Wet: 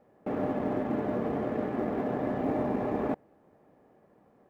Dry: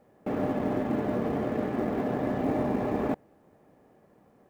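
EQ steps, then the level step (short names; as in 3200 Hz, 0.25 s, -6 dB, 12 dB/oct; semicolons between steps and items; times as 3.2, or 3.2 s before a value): low shelf 240 Hz -4.5 dB; high shelf 3100 Hz -9.5 dB; 0.0 dB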